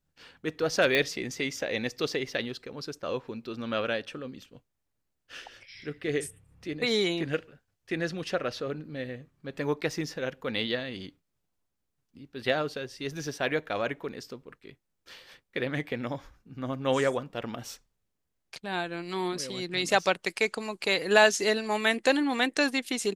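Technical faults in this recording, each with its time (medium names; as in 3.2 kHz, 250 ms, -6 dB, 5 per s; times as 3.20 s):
0.95 s: pop -12 dBFS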